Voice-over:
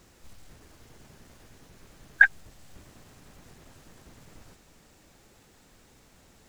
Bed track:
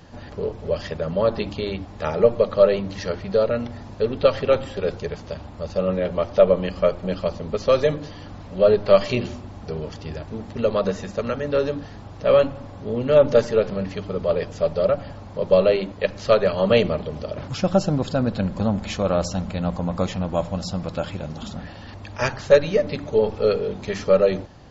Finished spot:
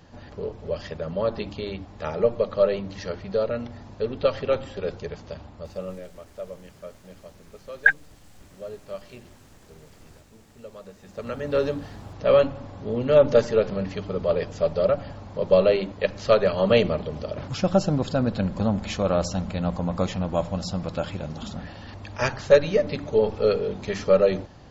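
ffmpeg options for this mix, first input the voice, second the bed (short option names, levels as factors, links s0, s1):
-filter_complex "[0:a]adelay=5650,volume=1[s0];[1:a]volume=5.62,afade=t=out:st=5.41:d=0.71:silence=0.149624,afade=t=in:st=10.99:d=0.61:silence=0.1[s1];[s0][s1]amix=inputs=2:normalize=0"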